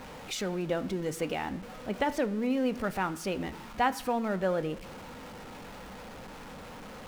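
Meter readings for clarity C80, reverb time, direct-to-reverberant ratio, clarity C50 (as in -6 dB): 18.5 dB, 0.85 s, 11.0 dB, 17.0 dB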